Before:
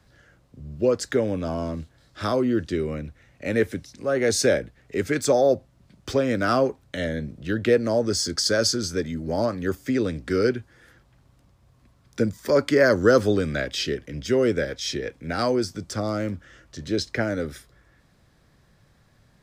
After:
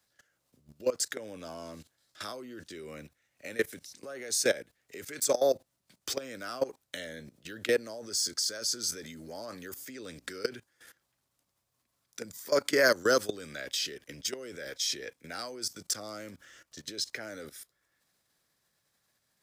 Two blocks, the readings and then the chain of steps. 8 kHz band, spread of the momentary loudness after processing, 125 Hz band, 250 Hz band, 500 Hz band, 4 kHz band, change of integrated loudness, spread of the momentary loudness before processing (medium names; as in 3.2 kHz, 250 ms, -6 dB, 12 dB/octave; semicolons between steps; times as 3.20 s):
-1.5 dB, 18 LU, -21.5 dB, -16.5 dB, -10.0 dB, -4.0 dB, -8.0 dB, 12 LU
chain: level held to a coarse grid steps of 18 dB; RIAA curve recording; trim -2.5 dB